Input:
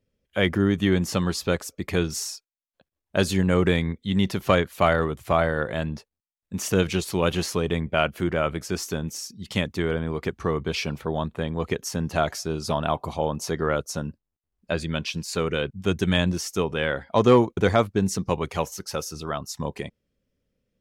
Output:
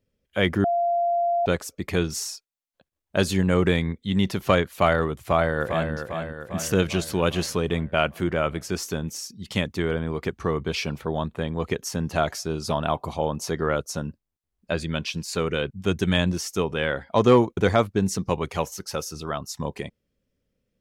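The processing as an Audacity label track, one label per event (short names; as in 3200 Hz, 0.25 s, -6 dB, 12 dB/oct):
0.640000	1.460000	bleep 691 Hz -19.5 dBFS
5.200000	5.920000	echo throw 0.4 s, feedback 60%, level -7 dB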